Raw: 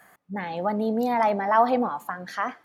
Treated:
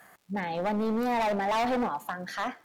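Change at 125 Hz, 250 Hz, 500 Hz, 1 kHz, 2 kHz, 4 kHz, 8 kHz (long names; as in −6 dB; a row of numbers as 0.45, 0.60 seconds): −1.0 dB, −2.5 dB, −4.5 dB, −5.5 dB, −2.5 dB, +3.5 dB, can't be measured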